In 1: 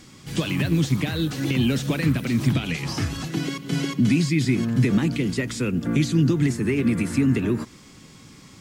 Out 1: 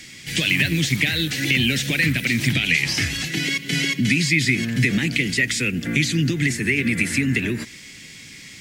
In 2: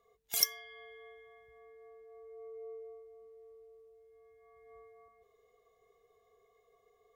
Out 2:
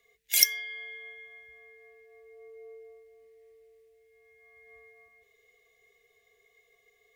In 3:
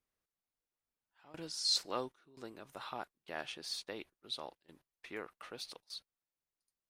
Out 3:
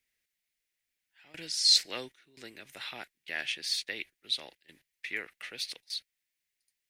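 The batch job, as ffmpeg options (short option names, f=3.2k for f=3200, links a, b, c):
-filter_complex "[0:a]acrossover=split=240[a][b];[b]acompressor=threshold=-23dB:ratio=6[c];[a][c]amix=inputs=2:normalize=0,highshelf=f=1.5k:t=q:w=3:g=9.5,volume=-1dB"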